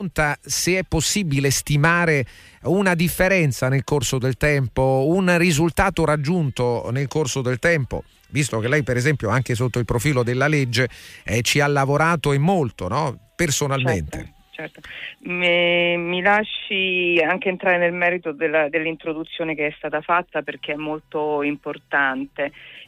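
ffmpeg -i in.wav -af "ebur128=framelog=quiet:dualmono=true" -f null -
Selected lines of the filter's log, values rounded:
Integrated loudness:
  I:         -17.2 LUFS
  Threshold: -27.5 LUFS
Loudness range:
  LRA:         4.5 LU
  Threshold: -37.4 LUFS
  LRA low:   -20.3 LUFS
  LRA high:  -15.8 LUFS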